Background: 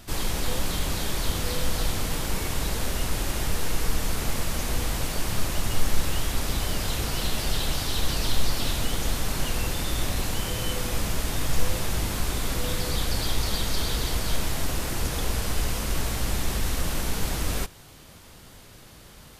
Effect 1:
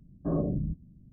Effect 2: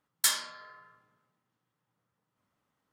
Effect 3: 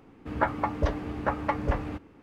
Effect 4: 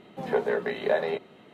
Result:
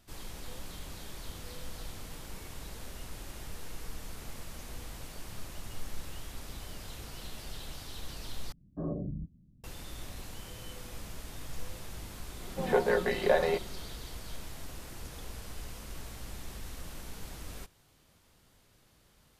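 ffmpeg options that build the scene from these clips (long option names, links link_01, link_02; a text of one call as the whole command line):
ffmpeg -i bed.wav -i cue0.wav -i cue1.wav -i cue2.wav -i cue3.wav -filter_complex "[0:a]volume=-16.5dB[link_01];[4:a]aecho=1:1:5.6:0.5[link_02];[link_01]asplit=2[link_03][link_04];[link_03]atrim=end=8.524[link_05];[1:a]atrim=end=1.12,asetpts=PTS-STARTPTS,volume=-7dB[link_06];[link_04]atrim=start=9.636[link_07];[link_02]atrim=end=1.53,asetpts=PTS-STARTPTS,volume=-0.5dB,afade=type=in:duration=0.004:curve=hsin,afade=type=out:start_time=1.526:duration=0.004:curve=hsin,adelay=12400[link_08];[link_05][link_06]acrossfade=duration=0.004:curve1=hsin:curve2=hsin[link_09];[link_09][link_07]acrossfade=duration=0.004:curve1=hsin:curve2=hsin[link_10];[link_10][link_08]amix=inputs=2:normalize=0" out.wav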